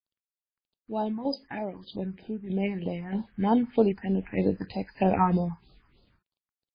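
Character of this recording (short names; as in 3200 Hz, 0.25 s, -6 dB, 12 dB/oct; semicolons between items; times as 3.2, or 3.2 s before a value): a quantiser's noise floor 10-bit, dither none; phasing stages 4, 3.2 Hz, lowest notch 510–2100 Hz; tremolo saw down 1.6 Hz, depth 55%; MP3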